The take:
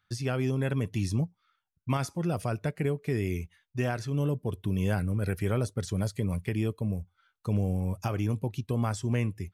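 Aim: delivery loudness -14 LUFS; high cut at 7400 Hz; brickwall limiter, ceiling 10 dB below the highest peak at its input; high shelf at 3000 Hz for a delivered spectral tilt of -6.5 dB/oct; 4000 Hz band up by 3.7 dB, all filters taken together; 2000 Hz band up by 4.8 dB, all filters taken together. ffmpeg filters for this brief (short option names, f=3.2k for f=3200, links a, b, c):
-af "lowpass=7.4k,equalizer=f=2k:t=o:g=6.5,highshelf=f=3k:g=-6.5,equalizer=f=4k:t=o:g=8.5,volume=20.5dB,alimiter=limit=-3dB:level=0:latency=1"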